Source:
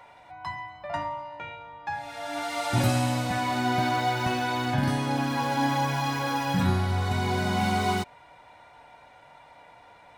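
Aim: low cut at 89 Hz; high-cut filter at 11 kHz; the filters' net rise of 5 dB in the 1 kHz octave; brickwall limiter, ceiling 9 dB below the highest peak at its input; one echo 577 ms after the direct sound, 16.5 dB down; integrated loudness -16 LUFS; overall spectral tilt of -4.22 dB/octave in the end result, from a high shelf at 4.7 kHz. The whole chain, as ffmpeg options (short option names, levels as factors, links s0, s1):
-af "highpass=89,lowpass=11000,equalizer=f=1000:t=o:g=7,highshelf=f=4700:g=-5.5,alimiter=limit=0.106:level=0:latency=1,aecho=1:1:577:0.15,volume=4.22"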